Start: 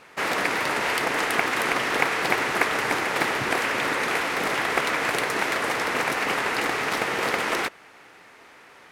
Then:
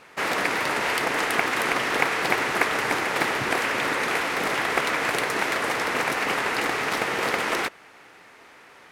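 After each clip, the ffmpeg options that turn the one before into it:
ffmpeg -i in.wav -af anull out.wav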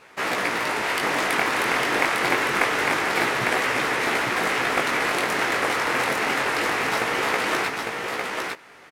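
ffmpeg -i in.wav -filter_complex "[0:a]flanger=delay=15.5:depth=7.8:speed=0.26,asplit=2[link_01][link_02];[link_02]aecho=0:1:853:0.668[link_03];[link_01][link_03]amix=inputs=2:normalize=0,volume=3dB" out.wav

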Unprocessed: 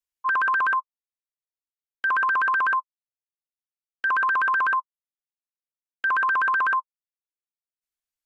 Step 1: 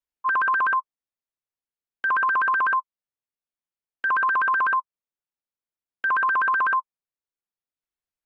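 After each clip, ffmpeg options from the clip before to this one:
ffmpeg -i in.wav -af "highshelf=frequency=2800:gain=-11.5,volume=2.5dB" out.wav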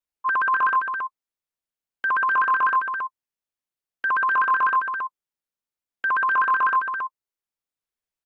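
ffmpeg -i in.wav -af "aecho=1:1:274:0.501" out.wav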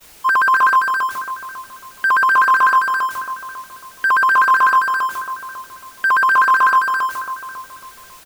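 ffmpeg -i in.wav -filter_complex "[0:a]aeval=exprs='val(0)+0.5*0.0211*sgn(val(0))':channel_layout=same,agate=range=-33dB:threshold=-36dB:ratio=3:detection=peak,asplit=2[link_01][link_02];[link_02]adelay=548,lowpass=frequency=1100:poles=1,volume=-9.5dB,asplit=2[link_03][link_04];[link_04]adelay=548,lowpass=frequency=1100:poles=1,volume=0.33,asplit=2[link_05][link_06];[link_06]adelay=548,lowpass=frequency=1100:poles=1,volume=0.33,asplit=2[link_07][link_08];[link_08]adelay=548,lowpass=frequency=1100:poles=1,volume=0.33[link_09];[link_01][link_03][link_05][link_07][link_09]amix=inputs=5:normalize=0,volume=6.5dB" out.wav

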